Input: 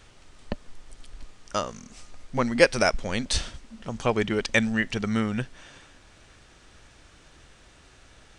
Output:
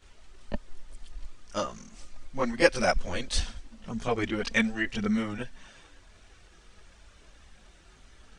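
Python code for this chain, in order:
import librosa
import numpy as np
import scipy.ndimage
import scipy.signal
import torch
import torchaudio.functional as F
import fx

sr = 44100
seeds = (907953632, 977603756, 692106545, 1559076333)

y = fx.chorus_voices(x, sr, voices=6, hz=0.46, base_ms=21, depth_ms=3.1, mix_pct=70)
y = y * 10.0 ** (-1.5 / 20.0)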